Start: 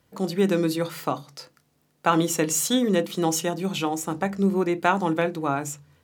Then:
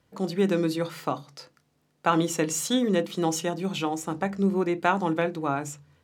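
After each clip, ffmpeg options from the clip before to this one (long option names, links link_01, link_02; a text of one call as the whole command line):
ffmpeg -i in.wav -af "highshelf=frequency=11000:gain=-11.5,volume=-2dB" out.wav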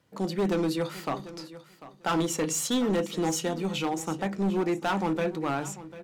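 ffmpeg -i in.wav -af "highpass=88,asoftclip=type=hard:threshold=-22dB,aecho=1:1:745|1490:0.158|0.0238" out.wav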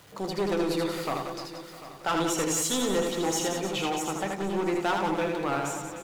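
ffmpeg -i in.wav -af "aeval=exprs='val(0)+0.5*0.00398*sgn(val(0))':channel_layout=same,equalizer=frequency=210:width_type=o:width=0.99:gain=-8,aecho=1:1:80|180|305|461.2|656.6:0.631|0.398|0.251|0.158|0.1" out.wav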